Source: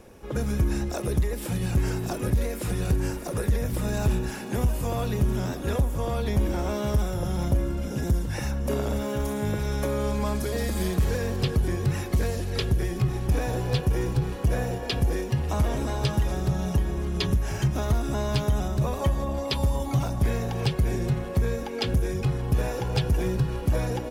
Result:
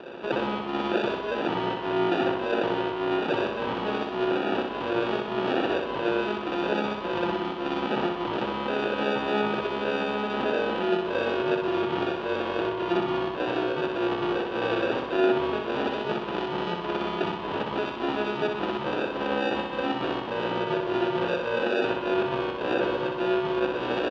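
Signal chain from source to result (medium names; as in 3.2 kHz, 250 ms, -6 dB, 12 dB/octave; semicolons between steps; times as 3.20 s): compressor with a negative ratio -30 dBFS, ratio -1; peak limiter -22 dBFS, peak gain reduction 7.5 dB; sample-and-hold 42×; 13.87–14.80 s: frequency shift -13 Hz; cabinet simulation 300–3500 Hz, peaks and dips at 360 Hz +6 dB, 1 kHz +10 dB, 2.1 kHz -5 dB, 3 kHz +6 dB; feedback delay 62 ms, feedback 59%, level -4.5 dB; trim +5 dB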